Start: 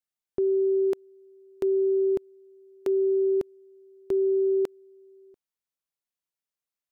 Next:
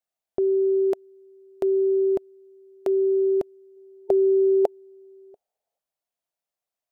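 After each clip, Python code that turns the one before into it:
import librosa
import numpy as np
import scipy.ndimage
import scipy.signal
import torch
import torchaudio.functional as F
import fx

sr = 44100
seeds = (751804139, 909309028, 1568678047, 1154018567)

y = fx.spec_box(x, sr, start_s=3.77, length_s=2.02, low_hz=390.0, high_hz=890.0, gain_db=10)
y = fx.peak_eq(y, sr, hz=670.0, db=13.5, octaves=0.66)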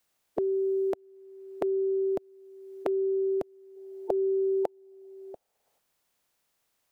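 y = fx.spec_clip(x, sr, under_db=12)
y = fx.band_squash(y, sr, depth_pct=70)
y = F.gain(torch.from_numpy(y), -6.0).numpy()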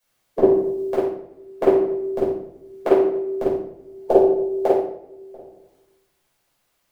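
y = fx.room_shoebox(x, sr, seeds[0], volume_m3=380.0, walls='mixed', distance_m=5.5)
y = fx.upward_expand(y, sr, threshold_db=-33.0, expansion=1.5)
y = F.gain(torch.from_numpy(y), 4.5).numpy()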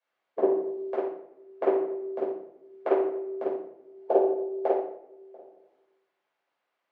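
y = fx.bandpass_edges(x, sr, low_hz=420.0, high_hz=2300.0)
y = F.gain(torch.from_numpy(y), -5.0).numpy()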